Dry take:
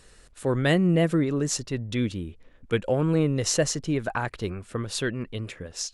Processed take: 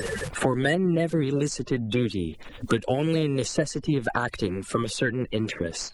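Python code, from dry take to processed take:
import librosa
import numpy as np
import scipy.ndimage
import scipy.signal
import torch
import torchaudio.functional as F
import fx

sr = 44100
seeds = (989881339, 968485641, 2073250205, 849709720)

y = fx.spec_quant(x, sr, step_db=30)
y = fx.high_shelf(y, sr, hz=2500.0, db=-9.5, at=(0.75, 1.52))
y = fx.band_squash(y, sr, depth_pct=100)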